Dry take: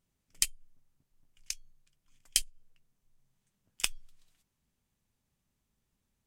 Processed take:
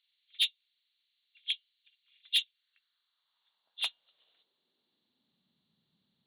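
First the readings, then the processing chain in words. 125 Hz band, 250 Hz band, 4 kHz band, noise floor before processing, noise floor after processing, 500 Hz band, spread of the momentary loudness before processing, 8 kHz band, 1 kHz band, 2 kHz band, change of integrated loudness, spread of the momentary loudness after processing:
under -20 dB, under -15 dB, +7.0 dB, -82 dBFS, -82 dBFS, no reading, 10 LU, -16.5 dB, -2.0 dB, +2.0 dB, +1.0 dB, 14 LU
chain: knee-point frequency compression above 2.7 kHz 4:1; saturation -25.5 dBFS, distortion -7 dB; high-pass sweep 2.3 kHz -> 170 Hz, 2.37–5.68 s

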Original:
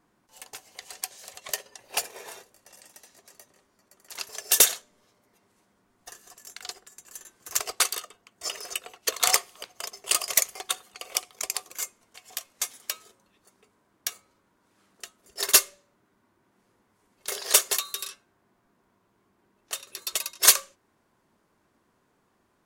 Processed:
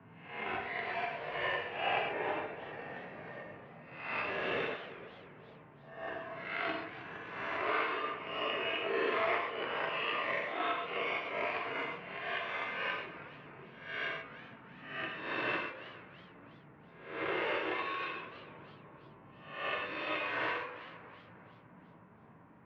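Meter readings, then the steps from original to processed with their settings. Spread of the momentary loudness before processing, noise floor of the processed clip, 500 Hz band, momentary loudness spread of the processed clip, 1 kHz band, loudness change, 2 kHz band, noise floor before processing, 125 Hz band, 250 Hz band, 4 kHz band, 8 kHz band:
24 LU, -57 dBFS, +4.0 dB, 19 LU, +2.0 dB, -10.5 dB, +1.0 dB, -70 dBFS, no reading, +8.0 dB, -12.5 dB, under -40 dB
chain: reverse spectral sustain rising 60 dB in 0.66 s; bass shelf 260 Hz +11 dB; band-stop 400 Hz, Q 12; harmonic-percussive split percussive -7 dB; compression 4:1, threshold -32 dBFS, peak gain reduction 16 dB; on a send: tape echo 460 ms, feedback 71%, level -18.5 dB, low-pass 1.5 kHz; on the sum: gated-style reverb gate 160 ms flat, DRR -0.5 dB; mistuned SSB -50 Hz 160–2600 Hz; in parallel at -1 dB: gain riding within 4 dB 0.5 s; on the sum: modulated delay 320 ms, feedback 44%, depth 182 cents, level -15.5 dB

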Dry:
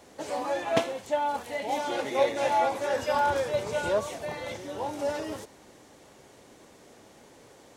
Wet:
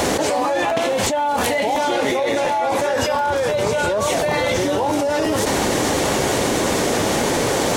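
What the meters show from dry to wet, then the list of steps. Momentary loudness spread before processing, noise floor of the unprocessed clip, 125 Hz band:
10 LU, -55 dBFS, +17.0 dB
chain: crackling interface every 0.35 s, samples 512, repeat, from 0.69 s; level flattener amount 100%

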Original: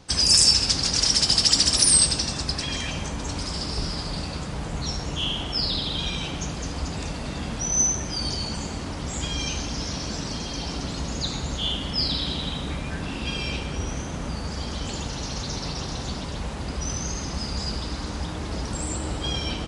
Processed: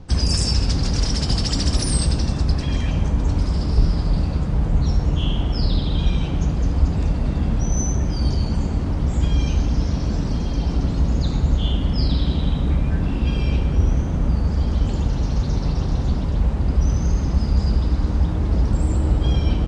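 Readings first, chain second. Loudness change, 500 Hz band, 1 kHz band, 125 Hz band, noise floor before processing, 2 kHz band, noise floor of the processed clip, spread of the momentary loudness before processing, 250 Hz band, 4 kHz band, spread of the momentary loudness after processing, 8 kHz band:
+3.0 dB, +3.5 dB, +0.5 dB, +12.0 dB, -33 dBFS, -3.5 dB, -24 dBFS, 15 LU, +7.5 dB, -7.5 dB, 3 LU, -10.0 dB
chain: tilt EQ -3.5 dB/octave

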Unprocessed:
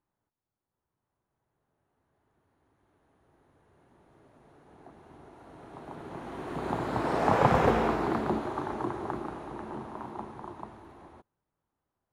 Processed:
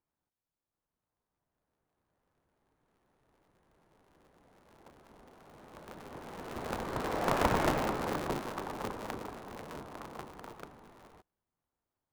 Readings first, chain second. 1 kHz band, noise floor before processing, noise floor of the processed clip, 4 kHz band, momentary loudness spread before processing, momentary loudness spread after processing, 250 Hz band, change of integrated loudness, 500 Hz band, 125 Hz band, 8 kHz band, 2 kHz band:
-6.0 dB, under -85 dBFS, under -85 dBFS, +1.5 dB, 20 LU, 20 LU, -6.0 dB, -5.0 dB, -5.5 dB, -6.5 dB, +6.0 dB, -2.5 dB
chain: cycle switcher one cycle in 3, inverted; trim -5.5 dB

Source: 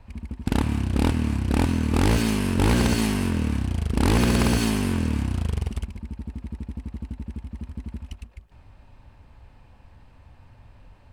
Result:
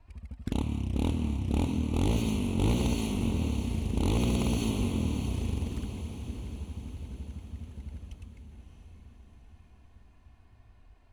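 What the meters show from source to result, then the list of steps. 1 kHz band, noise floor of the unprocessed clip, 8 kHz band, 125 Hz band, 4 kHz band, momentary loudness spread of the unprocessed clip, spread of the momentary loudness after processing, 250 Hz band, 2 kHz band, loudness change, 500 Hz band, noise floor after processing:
-10.0 dB, -52 dBFS, -9.0 dB, -6.0 dB, -8.0 dB, 16 LU, 16 LU, -6.5 dB, -13.0 dB, -7.0 dB, -7.0 dB, -58 dBFS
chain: touch-sensitive flanger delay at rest 3.2 ms, full sweep at -20 dBFS; echo that smears into a reverb 640 ms, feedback 55%, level -8 dB; trim -7 dB

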